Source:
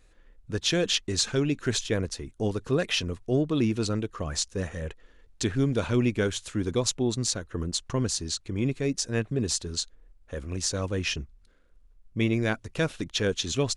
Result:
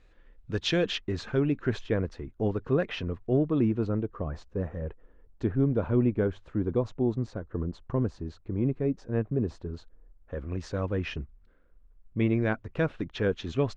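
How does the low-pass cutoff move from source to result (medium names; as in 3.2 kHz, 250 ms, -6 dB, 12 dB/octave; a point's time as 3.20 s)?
0.64 s 3.7 kHz
1.19 s 1.7 kHz
3.31 s 1.7 kHz
4.02 s 1 kHz
9.81 s 1 kHz
10.52 s 1.8 kHz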